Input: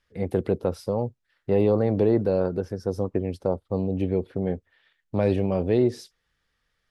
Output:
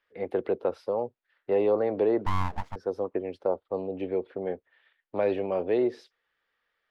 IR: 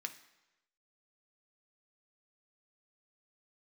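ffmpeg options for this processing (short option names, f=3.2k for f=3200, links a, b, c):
-filter_complex "[0:a]acrossover=split=320 3600:gain=0.0891 1 0.0891[a][b][c];[a][b][c]amix=inputs=3:normalize=0,asettb=1/sr,asplit=3[d][e][f];[d]atrim=end=2.264[g];[e]atrim=start=2.26:end=2.76,asetpts=PTS-STARTPTS,afade=t=in:d=0.004:c=qsin,afade=t=out:st=0.496:d=0.004:c=qsin,aeval=exprs='abs(val(0))':c=same[h];[f]atrim=start=2.756[i];[g][h]acrossfade=d=0.004:c1=hsin:c2=qsin[j];[j][i]acrossfade=d=0.004:c1=qsin:c2=hsin"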